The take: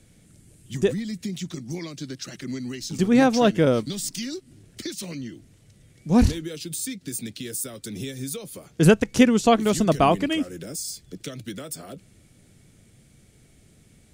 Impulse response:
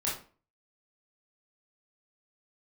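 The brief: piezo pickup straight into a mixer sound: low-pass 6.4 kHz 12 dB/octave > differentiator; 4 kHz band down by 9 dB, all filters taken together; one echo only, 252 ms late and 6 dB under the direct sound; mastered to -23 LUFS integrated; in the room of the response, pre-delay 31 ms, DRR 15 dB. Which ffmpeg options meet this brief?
-filter_complex "[0:a]equalizer=f=4000:t=o:g=-4,aecho=1:1:252:0.501,asplit=2[s0][s1];[1:a]atrim=start_sample=2205,adelay=31[s2];[s1][s2]afir=irnorm=-1:irlink=0,volume=0.0891[s3];[s0][s3]amix=inputs=2:normalize=0,lowpass=6400,aderivative,volume=7.08"

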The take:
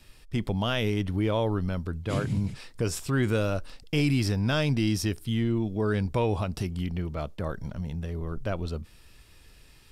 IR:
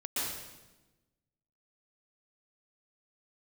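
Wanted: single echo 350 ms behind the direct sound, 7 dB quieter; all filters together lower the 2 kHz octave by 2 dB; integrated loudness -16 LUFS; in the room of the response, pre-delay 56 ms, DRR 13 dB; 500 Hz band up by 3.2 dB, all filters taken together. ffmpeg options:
-filter_complex "[0:a]equalizer=f=500:t=o:g=4,equalizer=f=2000:t=o:g=-3,aecho=1:1:350:0.447,asplit=2[s0][s1];[1:a]atrim=start_sample=2205,adelay=56[s2];[s1][s2]afir=irnorm=-1:irlink=0,volume=0.119[s3];[s0][s3]amix=inputs=2:normalize=0,volume=3.55"

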